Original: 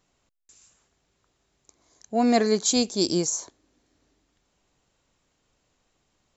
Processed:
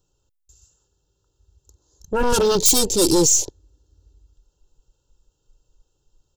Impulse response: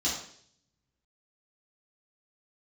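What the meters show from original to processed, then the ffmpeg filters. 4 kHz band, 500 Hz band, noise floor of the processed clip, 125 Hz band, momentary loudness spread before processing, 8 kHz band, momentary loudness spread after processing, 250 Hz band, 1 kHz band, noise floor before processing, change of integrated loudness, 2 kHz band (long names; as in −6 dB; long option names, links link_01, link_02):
+5.5 dB, +5.5 dB, −72 dBFS, +6.0 dB, 8 LU, can't be measured, 11 LU, +1.0 dB, +3.0 dB, −73 dBFS, +6.5 dB, +4.0 dB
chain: -af "aeval=exprs='0.398*sin(PI/2*5.01*val(0)/0.398)':channel_layout=same,aeval=exprs='0.398*(cos(1*acos(clip(val(0)/0.398,-1,1)))-cos(1*PI/2))+0.0251*(cos(5*acos(clip(val(0)/0.398,-1,1)))-cos(5*PI/2))+0.0316*(cos(6*acos(clip(val(0)/0.398,-1,1)))-cos(6*PI/2))+0.00447*(cos(7*acos(clip(val(0)/0.398,-1,1)))-cos(7*PI/2))':channel_layout=same,asuperstop=centerf=2100:order=12:qfactor=2.4,equalizer=frequency=1500:width=0.3:gain=-12.5,aecho=1:1:2.2:0.71,afwtdn=0.0316"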